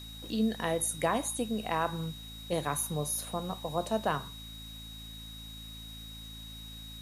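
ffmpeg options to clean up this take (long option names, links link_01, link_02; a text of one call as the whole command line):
ffmpeg -i in.wav -af "bandreject=frequency=54.8:width_type=h:width=4,bandreject=frequency=109.6:width_type=h:width=4,bandreject=frequency=164.4:width_type=h:width=4,bandreject=frequency=219.2:width_type=h:width=4,bandreject=frequency=274:width_type=h:width=4,bandreject=frequency=3800:width=30,afftdn=noise_reduction=30:noise_floor=-45" out.wav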